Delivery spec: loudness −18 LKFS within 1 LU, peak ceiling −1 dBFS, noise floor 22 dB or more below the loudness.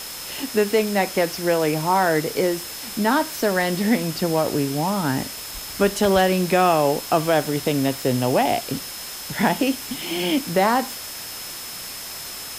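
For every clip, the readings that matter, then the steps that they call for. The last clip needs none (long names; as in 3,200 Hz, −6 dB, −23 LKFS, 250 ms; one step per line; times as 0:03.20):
interfering tone 5,200 Hz; level of the tone −38 dBFS; background noise floor −34 dBFS; target noise floor −44 dBFS; integrated loudness −22.0 LKFS; sample peak −6.0 dBFS; target loudness −18.0 LKFS
→ notch filter 5,200 Hz, Q 30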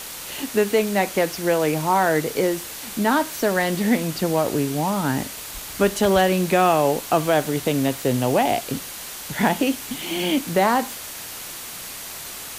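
interfering tone none found; background noise floor −35 dBFS; target noise floor −44 dBFS
→ broadband denoise 9 dB, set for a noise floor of −35 dBFS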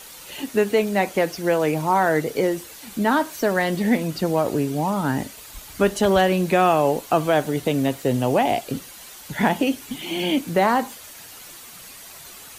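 background noise floor −42 dBFS; target noise floor −44 dBFS
→ broadband denoise 6 dB, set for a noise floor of −42 dBFS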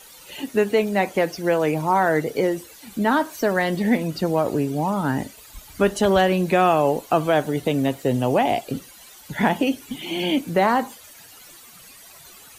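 background noise floor −46 dBFS; integrated loudness −21.5 LKFS; sample peak −6.0 dBFS; target loudness −18.0 LKFS
→ level +3.5 dB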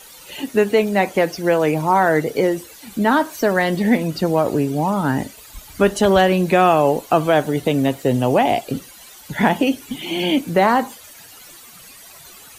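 integrated loudness −18.0 LKFS; sample peak −2.5 dBFS; background noise floor −43 dBFS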